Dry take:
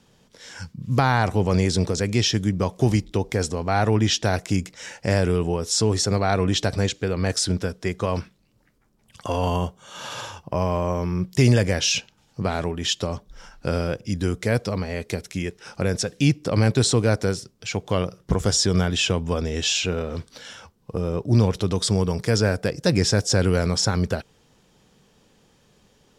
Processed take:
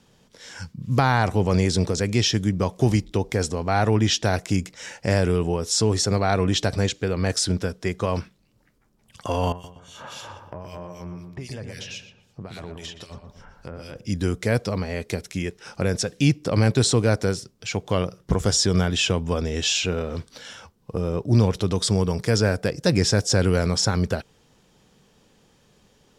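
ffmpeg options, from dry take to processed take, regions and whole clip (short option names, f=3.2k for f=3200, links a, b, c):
-filter_complex "[0:a]asettb=1/sr,asplit=3[a][b][c];[a]atrim=end=9.524[d];[b]atrim=start=9.52:end=13.96,asetpts=PTS-STARTPTS,afade=t=in:d=0.004:c=qsin,afade=t=out:st=4.436:d=0.004:c=qsin,acrossover=split=2100[e][f];[e]aeval=exprs='val(0)*(1-1/2+1/2*cos(2*PI*3.8*n/s))':c=same[g];[f]aeval=exprs='val(0)*(1-1/2-1/2*cos(2*PI*3.8*n/s))':c=same[h];[g][h]amix=inputs=2:normalize=0,acompressor=threshold=-33dB:ratio=4:attack=3.2:release=140:knee=1:detection=peak,asplit=2[i][j];[j]adelay=120,lowpass=f=1.3k:p=1,volume=-4.5dB,asplit=2[k][l];[l]adelay=120,lowpass=f=1.3k:p=1,volume=0.51,asplit=2[m][n];[n]adelay=120,lowpass=f=1.3k:p=1,volume=0.51,asplit=2[o][p];[p]adelay=120,lowpass=f=1.3k:p=1,volume=0.51,asplit=2[q][r];[r]adelay=120,lowpass=f=1.3k:p=1,volume=0.51,asplit=2[s][t];[t]adelay=120,lowpass=f=1.3k:p=1,volume=0.51,asplit=2[u][v];[v]adelay=120,lowpass=f=1.3k:p=1,volume=0.51[w];[i][k][m][o][q][s][u][w]amix=inputs=8:normalize=0,atrim=end_sample=195804[x];[c]atrim=start=13.956[y];[d][x]acrossfade=d=0.004:c1=hsin:c2=qsin[z];[z][y]acrossfade=d=0.004:c1=qsin:c2=hsin"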